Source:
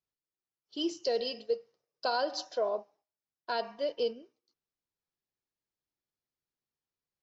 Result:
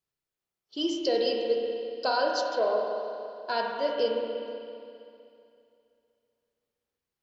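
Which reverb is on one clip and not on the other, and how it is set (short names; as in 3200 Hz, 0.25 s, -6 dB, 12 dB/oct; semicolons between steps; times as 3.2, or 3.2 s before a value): spring tank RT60 2.6 s, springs 31/47 ms, chirp 55 ms, DRR -0.5 dB; gain +3 dB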